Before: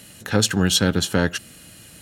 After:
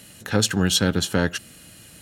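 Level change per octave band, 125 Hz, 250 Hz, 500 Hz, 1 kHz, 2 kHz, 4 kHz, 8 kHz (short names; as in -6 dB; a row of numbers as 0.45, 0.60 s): -1.5, -1.5, -1.5, -1.5, -1.5, -1.5, -1.5 dB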